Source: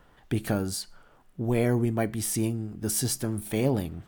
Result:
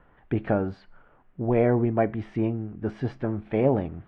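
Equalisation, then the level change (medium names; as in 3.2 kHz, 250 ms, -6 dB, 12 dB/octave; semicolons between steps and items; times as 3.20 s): low-pass 2.4 kHz 24 dB/octave; dynamic bell 650 Hz, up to +7 dB, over -40 dBFS, Q 0.81; 0.0 dB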